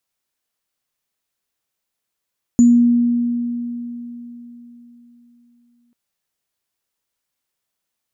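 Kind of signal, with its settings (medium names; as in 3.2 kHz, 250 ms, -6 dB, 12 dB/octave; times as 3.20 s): sine partials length 3.34 s, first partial 239 Hz, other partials 6.95 kHz, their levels -17.5 dB, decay 3.86 s, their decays 0.30 s, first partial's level -6 dB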